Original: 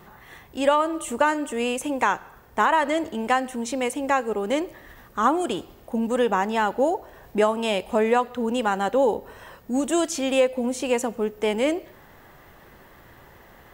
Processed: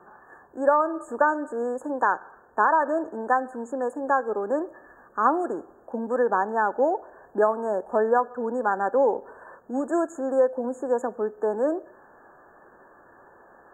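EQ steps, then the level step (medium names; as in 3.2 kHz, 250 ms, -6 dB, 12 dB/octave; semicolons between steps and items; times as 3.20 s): brick-wall FIR band-stop 1.8–6.5 kHz; three-band isolator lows -18 dB, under 260 Hz, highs -17 dB, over 4.9 kHz; treble shelf 8.3 kHz -10 dB; 0.0 dB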